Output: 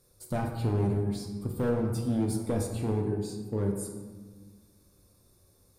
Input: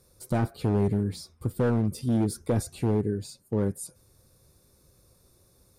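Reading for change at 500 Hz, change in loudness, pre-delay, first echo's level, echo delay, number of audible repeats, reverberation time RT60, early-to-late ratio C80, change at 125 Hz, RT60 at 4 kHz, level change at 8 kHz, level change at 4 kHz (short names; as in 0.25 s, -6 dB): -2.0 dB, -2.5 dB, 3 ms, none, none, none, 1.5 s, 6.5 dB, -2.5 dB, 0.85 s, -2.0 dB, -3.0 dB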